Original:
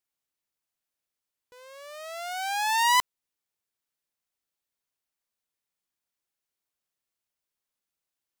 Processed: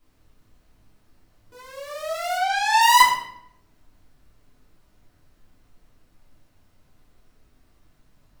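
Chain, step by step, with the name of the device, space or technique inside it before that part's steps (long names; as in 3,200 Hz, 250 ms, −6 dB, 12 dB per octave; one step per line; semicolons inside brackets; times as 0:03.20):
turntable without a phono preamp (RIAA equalisation recording; white noise bed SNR 38 dB)
0:02.35–0:02.80: low-pass filter 4,100 Hz → 8,100 Hz 12 dB per octave
spectral tilt −4 dB per octave
rectangular room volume 190 cubic metres, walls mixed, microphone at 3.2 metres
level −2 dB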